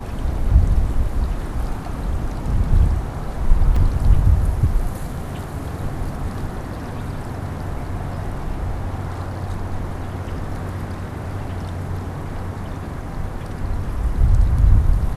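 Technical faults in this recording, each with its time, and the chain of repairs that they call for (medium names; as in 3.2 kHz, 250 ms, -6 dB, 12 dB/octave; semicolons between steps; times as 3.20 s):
3.76 s: dropout 3.9 ms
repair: interpolate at 3.76 s, 3.9 ms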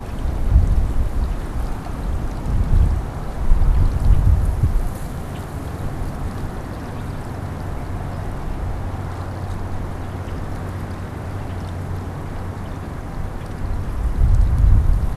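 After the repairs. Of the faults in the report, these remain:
nothing left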